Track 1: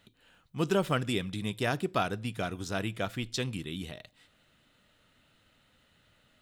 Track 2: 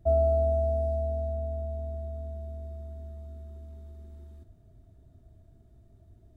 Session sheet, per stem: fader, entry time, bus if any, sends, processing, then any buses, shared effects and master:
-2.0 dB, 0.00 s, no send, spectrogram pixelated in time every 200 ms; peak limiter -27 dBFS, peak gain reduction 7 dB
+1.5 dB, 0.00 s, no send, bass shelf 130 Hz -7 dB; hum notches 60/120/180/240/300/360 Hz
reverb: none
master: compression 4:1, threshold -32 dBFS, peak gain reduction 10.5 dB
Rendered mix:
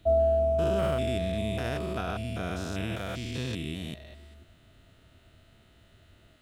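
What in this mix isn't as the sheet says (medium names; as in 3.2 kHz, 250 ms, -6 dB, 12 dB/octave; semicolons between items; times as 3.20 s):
stem 1 -2.0 dB -> +4.0 dB; master: missing compression 4:1, threshold -32 dBFS, peak gain reduction 10.5 dB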